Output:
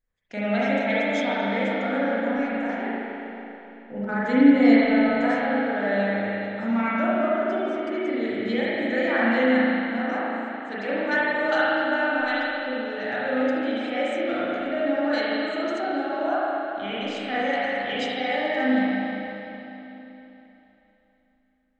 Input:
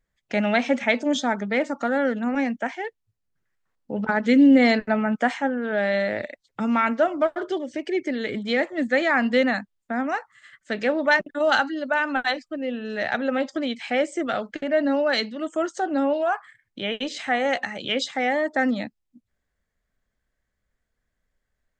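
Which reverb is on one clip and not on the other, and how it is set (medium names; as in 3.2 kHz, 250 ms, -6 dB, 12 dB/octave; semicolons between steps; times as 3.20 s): spring tank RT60 3.4 s, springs 35/39 ms, chirp 50 ms, DRR -9.5 dB; trim -10.5 dB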